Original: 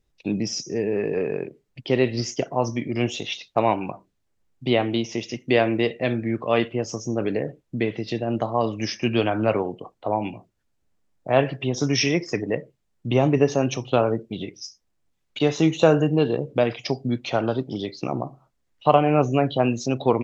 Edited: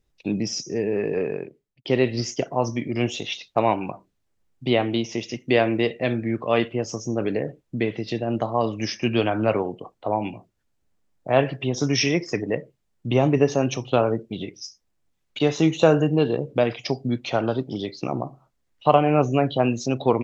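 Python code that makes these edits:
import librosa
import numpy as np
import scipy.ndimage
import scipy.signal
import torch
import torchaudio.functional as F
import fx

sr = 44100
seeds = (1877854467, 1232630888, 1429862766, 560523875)

y = fx.edit(x, sr, fx.fade_out_span(start_s=1.23, length_s=0.62), tone=tone)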